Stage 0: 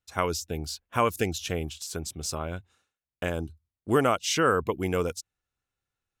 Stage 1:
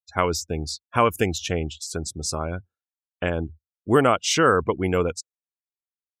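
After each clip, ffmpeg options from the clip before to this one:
ffmpeg -i in.wav -af "afftdn=noise_reduction=36:noise_floor=-44,volume=5dB" out.wav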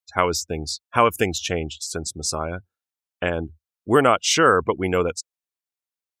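ffmpeg -i in.wav -af "lowshelf=frequency=270:gain=-6,volume=3dB" out.wav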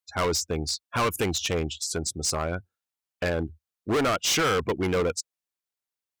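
ffmpeg -i in.wav -af "volume=21dB,asoftclip=hard,volume=-21dB" out.wav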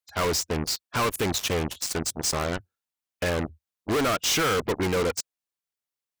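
ffmpeg -i in.wav -af "aeval=exprs='0.0944*(cos(1*acos(clip(val(0)/0.0944,-1,1)))-cos(1*PI/2))+0.0237*(cos(7*acos(clip(val(0)/0.0944,-1,1)))-cos(7*PI/2))':channel_layout=same,volume=1dB" out.wav

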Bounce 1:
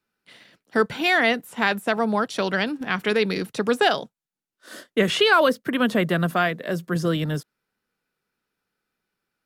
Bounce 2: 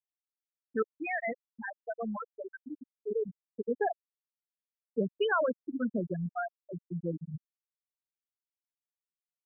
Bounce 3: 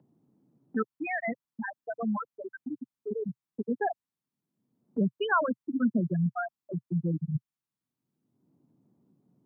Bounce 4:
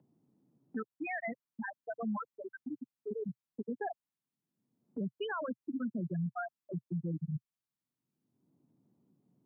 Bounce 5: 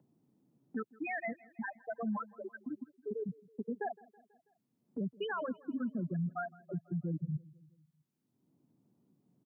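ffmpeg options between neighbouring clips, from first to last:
ffmpeg -i in.wav -af "afftfilt=real='re*gte(hypot(re,im),0.562)':imag='im*gte(hypot(re,im),0.562)':win_size=1024:overlap=0.75,lowpass=frequency=1700:poles=1,volume=-8.5dB" out.wav
ffmpeg -i in.wav -filter_complex "[0:a]equalizer=frequency=125:width_type=o:width=1:gain=11,equalizer=frequency=250:width_type=o:width=1:gain=5,equalizer=frequency=500:width_type=o:width=1:gain=-7,equalizer=frequency=1000:width_type=o:width=1:gain=7,acrossover=split=150|410|1400[link_01][link_02][link_03][link_04];[link_02]acompressor=mode=upward:threshold=-33dB:ratio=2.5[link_05];[link_01][link_05][link_03][link_04]amix=inputs=4:normalize=0" out.wav
ffmpeg -i in.wav -af "alimiter=level_in=1dB:limit=-24dB:level=0:latency=1:release=120,volume=-1dB,volume=-4.5dB" out.wav
ffmpeg -i in.wav -af "aecho=1:1:163|326|489|652:0.0708|0.0411|0.0238|0.0138" out.wav

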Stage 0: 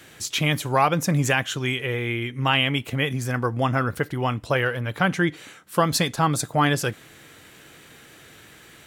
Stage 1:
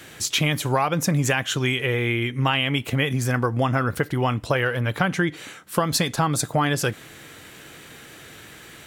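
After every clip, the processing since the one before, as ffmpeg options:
ffmpeg -i in.wav -af "acompressor=threshold=-22dB:ratio=6,volume=4.5dB" out.wav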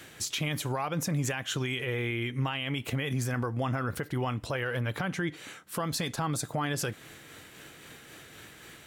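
ffmpeg -i in.wav -af "tremolo=f=3.8:d=0.31,alimiter=limit=-17.5dB:level=0:latency=1:release=49,volume=-4.5dB" out.wav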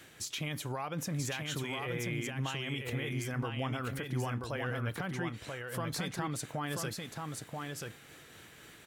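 ffmpeg -i in.wav -af "aecho=1:1:984:0.631,volume=-6dB" out.wav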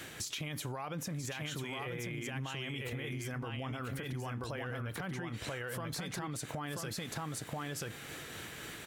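ffmpeg -i in.wav -af "alimiter=level_in=9.5dB:limit=-24dB:level=0:latency=1:release=74,volume=-9.5dB,acompressor=threshold=-45dB:ratio=6,volume=8.5dB" out.wav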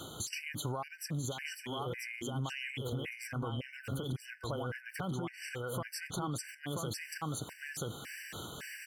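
ffmpeg -i in.wav -af "afftfilt=real='re*gt(sin(2*PI*1.8*pts/sr)*(1-2*mod(floor(b*sr/1024/1500),2)),0)':imag='im*gt(sin(2*PI*1.8*pts/sr)*(1-2*mod(floor(b*sr/1024/1500),2)),0)':win_size=1024:overlap=0.75,volume=3.5dB" out.wav

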